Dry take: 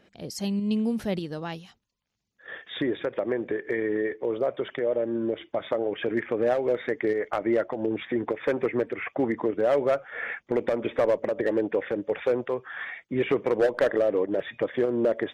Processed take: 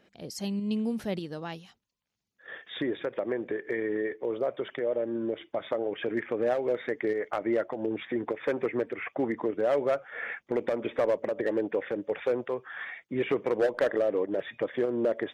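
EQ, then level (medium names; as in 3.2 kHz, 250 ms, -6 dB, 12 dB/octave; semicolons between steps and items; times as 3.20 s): bass shelf 84 Hz -7 dB; -3.0 dB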